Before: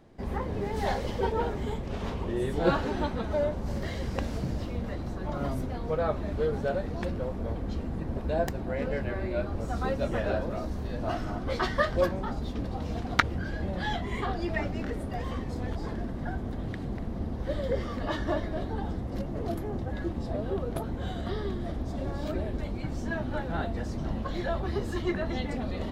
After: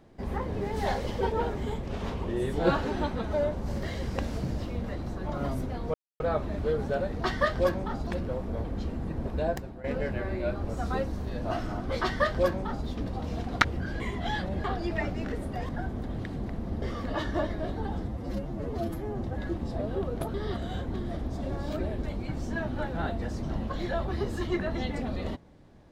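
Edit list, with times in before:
5.94 insert silence 0.26 s
8.32–8.75 fade out, to -15.5 dB
9.99–10.66 cut
11.61–12.44 copy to 6.98
13.58–14.22 reverse
15.27–16.18 cut
17.31–17.75 cut
19.01–19.77 stretch 1.5×
20.89–21.49 reverse

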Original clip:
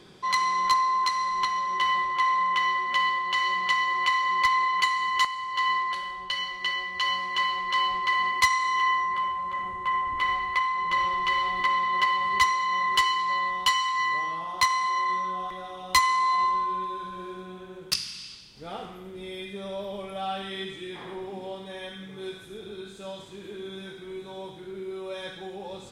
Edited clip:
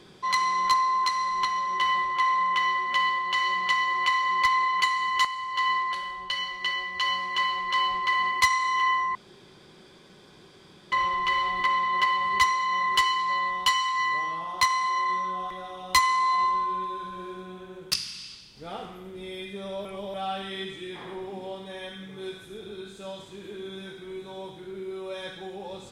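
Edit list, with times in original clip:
9.15–10.92 room tone
19.85–20.14 reverse

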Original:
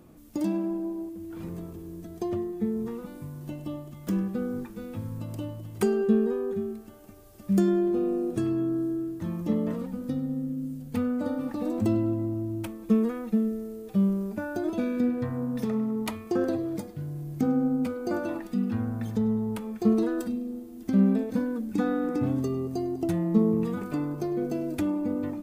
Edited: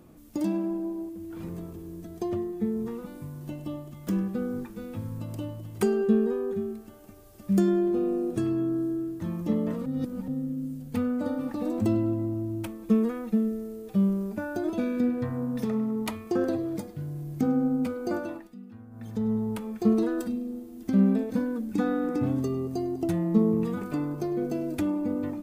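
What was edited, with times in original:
9.86–10.28 reverse
18.1–19.35 dip -17.5 dB, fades 0.45 s

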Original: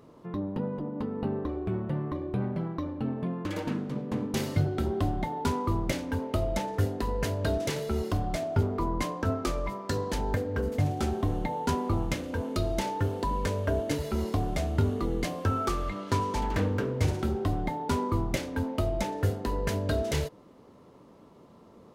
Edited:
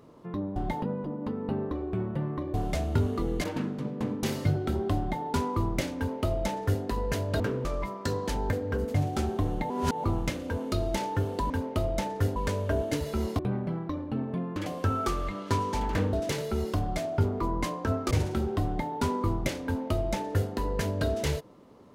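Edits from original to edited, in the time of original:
2.28–3.55 swap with 14.37–15.27
5.09–5.35 copy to 0.56
6.08–6.94 copy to 13.34
7.51–9.49 swap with 16.74–16.99
11.54–11.88 reverse

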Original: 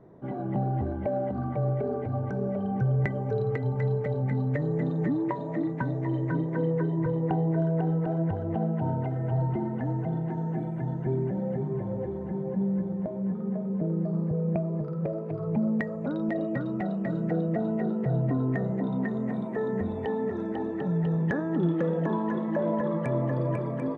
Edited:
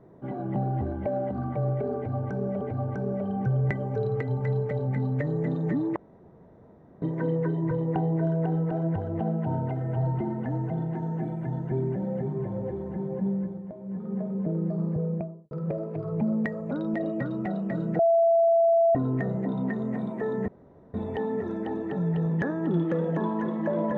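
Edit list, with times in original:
1.96–2.61 loop, 2 plays
5.31–6.37 room tone
12.64–13.53 dip -8 dB, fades 0.35 s
14.33–14.86 studio fade out
17.34–18.3 bleep 669 Hz -17 dBFS
19.83 insert room tone 0.46 s

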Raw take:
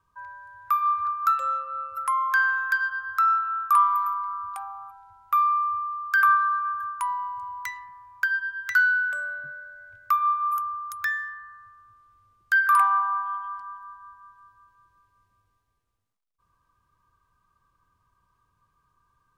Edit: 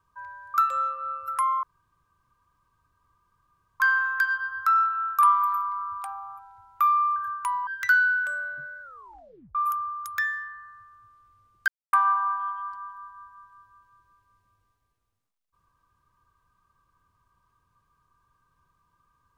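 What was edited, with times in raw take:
0.54–1.23 cut
2.32 insert room tone 2.17 s
5.68–6.72 cut
7.23–8.53 cut
9.68 tape stop 0.73 s
12.54–12.79 mute

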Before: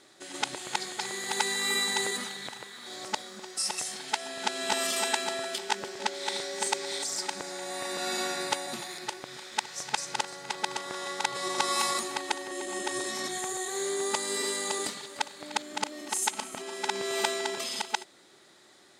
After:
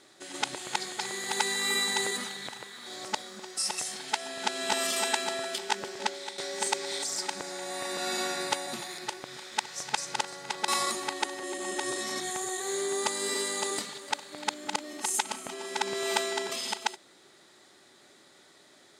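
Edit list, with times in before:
6.07–6.38 fade out, to -13.5 dB
10.68–11.76 cut

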